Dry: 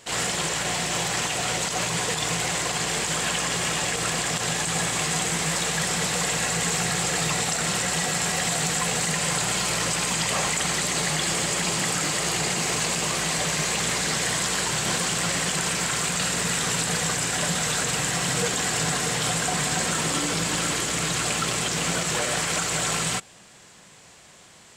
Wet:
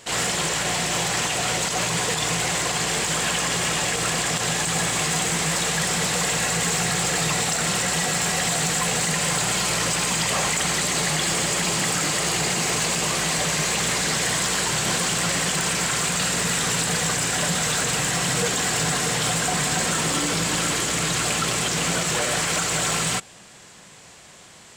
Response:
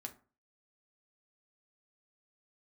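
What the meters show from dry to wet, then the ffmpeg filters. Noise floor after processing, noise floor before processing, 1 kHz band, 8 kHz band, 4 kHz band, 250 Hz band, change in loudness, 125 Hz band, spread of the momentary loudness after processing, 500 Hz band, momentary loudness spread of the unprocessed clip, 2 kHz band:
−47 dBFS, −50 dBFS, +2.0 dB, +2.0 dB, +2.0 dB, +2.0 dB, +2.0 dB, +2.0 dB, 1 LU, +2.0 dB, 1 LU, +2.0 dB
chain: -af "asoftclip=type=tanh:threshold=-18.5dB,volume=3.5dB"

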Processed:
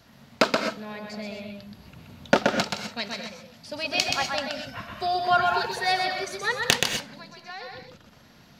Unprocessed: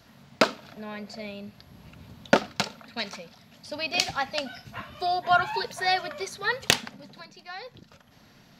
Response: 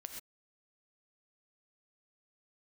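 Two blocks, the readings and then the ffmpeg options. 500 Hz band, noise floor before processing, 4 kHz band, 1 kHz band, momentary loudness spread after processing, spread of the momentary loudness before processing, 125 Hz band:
+2.0 dB, −56 dBFS, +2.0 dB, +1.5 dB, 18 LU, 19 LU, +2.0 dB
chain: -filter_complex "[0:a]asplit=2[link_01][link_02];[1:a]atrim=start_sample=2205,adelay=126[link_03];[link_02][link_03]afir=irnorm=-1:irlink=0,volume=1.5dB[link_04];[link_01][link_04]amix=inputs=2:normalize=0"

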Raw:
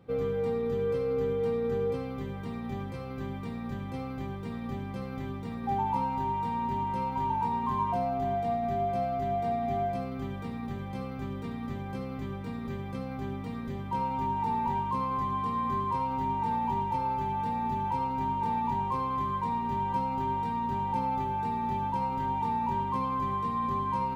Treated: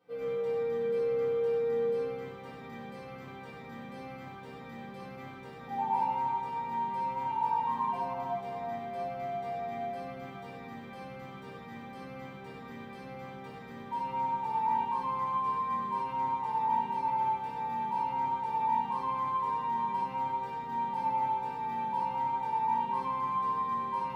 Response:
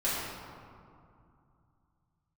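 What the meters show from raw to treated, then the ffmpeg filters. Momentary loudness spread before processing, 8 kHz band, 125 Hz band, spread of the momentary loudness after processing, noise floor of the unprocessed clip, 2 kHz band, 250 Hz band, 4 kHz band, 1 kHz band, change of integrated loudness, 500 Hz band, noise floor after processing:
8 LU, can't be measured, −12.5 dB, 15 LU, −38 dBFS, −0.5 dB, −10.0 dB, −2.5 dB, −1.0 dB, −0.5 dB, −2.0 dB, −46 dBFS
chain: -filter_complex "[0:a]highpass=frequency=680:poles=1[link_01];[1:a]atrim=start_sample=2205,asetrate=57330,aresample=44100[link_02];[link_01][link_02]afir=irnorm=-1:irlink=0,volume=-7.5dB"

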